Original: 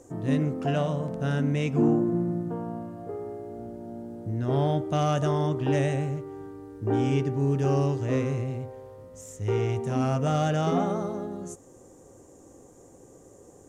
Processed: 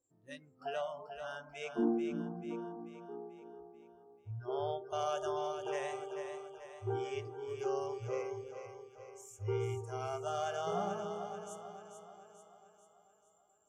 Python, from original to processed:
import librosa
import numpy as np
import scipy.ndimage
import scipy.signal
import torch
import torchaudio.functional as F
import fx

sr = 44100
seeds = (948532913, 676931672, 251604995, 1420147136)

y = fx.noise_reduce_blind(x, sr, reduce_db=28)
y = fx.echo_split(y, sr, split_hz=420.0, low_ms=325, high_ms=438, feedback_pct=52, wet_db=-7.5)
y = y * librosa.db_to_amplitude(-8.5)